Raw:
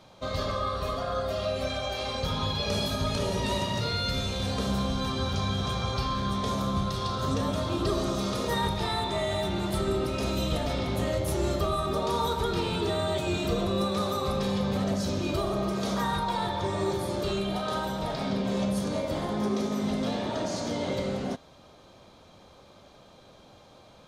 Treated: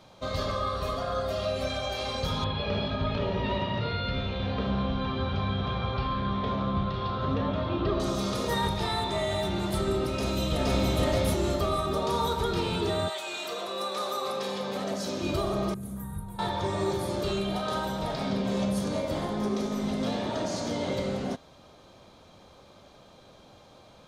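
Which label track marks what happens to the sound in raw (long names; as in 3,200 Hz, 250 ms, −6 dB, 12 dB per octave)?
2.440000	8.000000	low-pass filter 3,300 Hz 24 dB per octave
10.110000	10.870000	delay throw 470 ms, feedback 35%, level −0.5 dB
13.080000	15.210000	high-pass filter 930 Hz → 230 Hz
15.740000	16.390000	drawn EQ curve 120 Hz 0 dB, 280 Hz −11 dB, 570 Hz −20 dB, 1,800 Hz −21 dB, 5,300 Hz −30 dB, 10,000 Hz +3 dB
19.280000	20.000000	amplitude modulation modulator 210 Hz, depth 15%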